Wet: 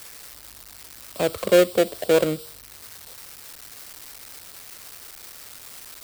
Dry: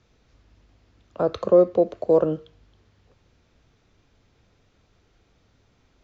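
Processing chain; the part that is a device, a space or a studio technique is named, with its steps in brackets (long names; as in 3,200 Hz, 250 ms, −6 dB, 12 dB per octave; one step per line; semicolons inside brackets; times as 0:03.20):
budget class-D amplifier (gap after every zero crossing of 0.23 ms; spike at every zero crossing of −22 dBFS)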